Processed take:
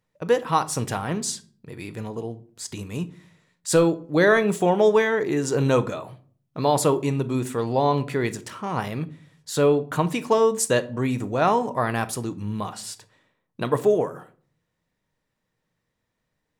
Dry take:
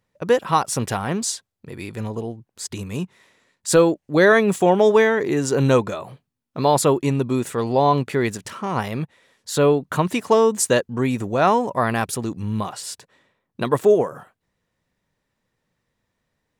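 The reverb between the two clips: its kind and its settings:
rectangular room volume 420 cubic metres, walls furnished, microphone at 0.52 metres
level −3.5 dB

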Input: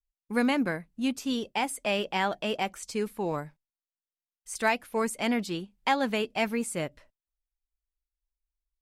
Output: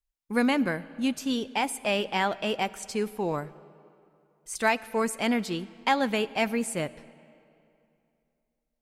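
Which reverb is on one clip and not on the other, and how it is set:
comb and all-pass reverb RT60 2.7 s, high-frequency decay 0.75×, pre-delay 25 ms, DRR 18.5 dB
level +1.5 dB

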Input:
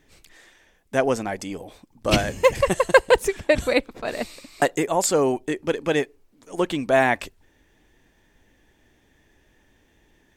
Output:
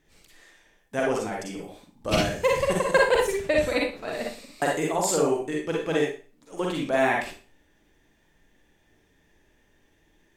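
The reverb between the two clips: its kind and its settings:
four-comb reverb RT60 0.37 s, DRR −2 dB
level −7 dB

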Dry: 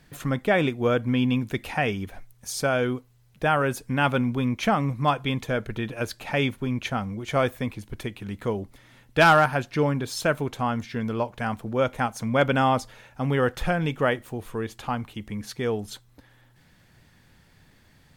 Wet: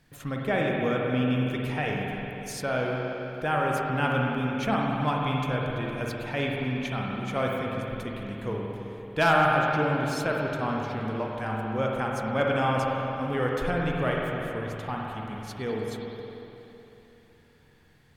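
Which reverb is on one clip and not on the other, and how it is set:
spring reverb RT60 3.3 s, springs 46/55 ms, chirp 55 ms, DRR −2 dB
level −6.5 dB

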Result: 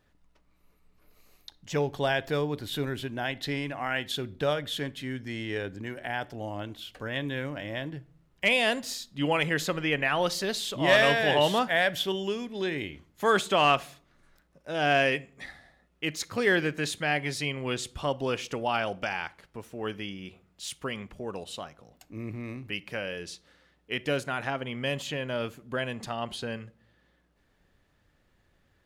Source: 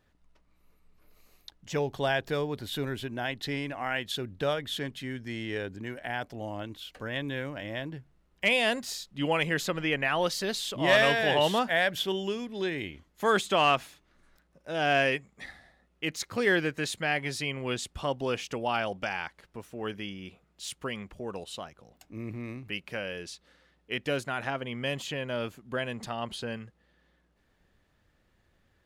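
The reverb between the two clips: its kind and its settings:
rectangular room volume 600 cubic metres, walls furnished, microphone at 0.3 metres
level +1 dB

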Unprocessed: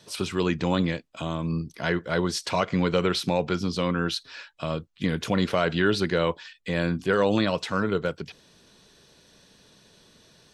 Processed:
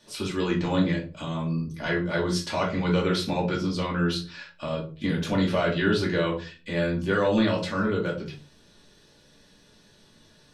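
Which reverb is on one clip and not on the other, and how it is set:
rectangular room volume 200 cubic metres, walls furnished, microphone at 2.5 metres
level −6 dB

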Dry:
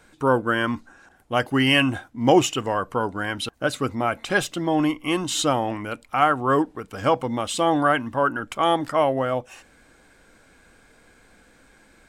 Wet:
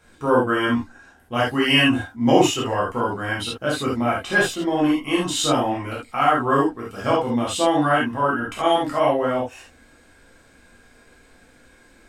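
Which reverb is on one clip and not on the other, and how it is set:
reverb whose tail is shaped and stops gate 100 ms flat, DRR −5.5 dB
level −5 dB

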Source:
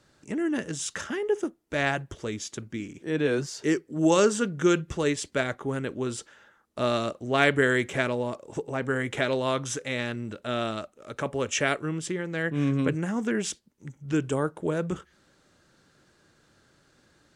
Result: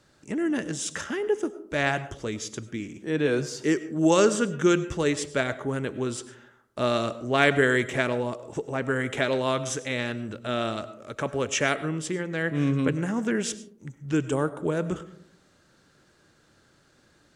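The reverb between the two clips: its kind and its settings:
comb and all-pass reverb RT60 0.66 s, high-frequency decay 0.3×, pre-delay 60 ms, DRR 14.5 dB
level +1 dB

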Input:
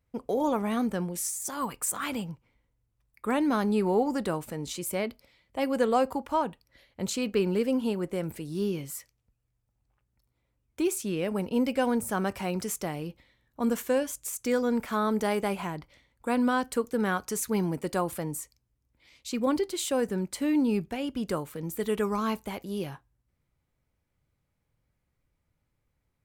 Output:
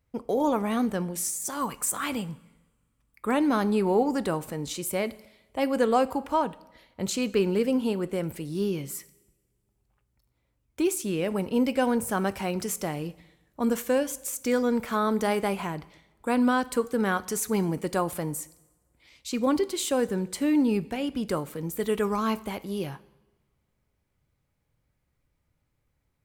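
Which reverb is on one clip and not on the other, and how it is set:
coupled-rooms reverb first 0.87 s, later 2.9 s, from −25 dB, DRR 16.5 dB
level +2 dB

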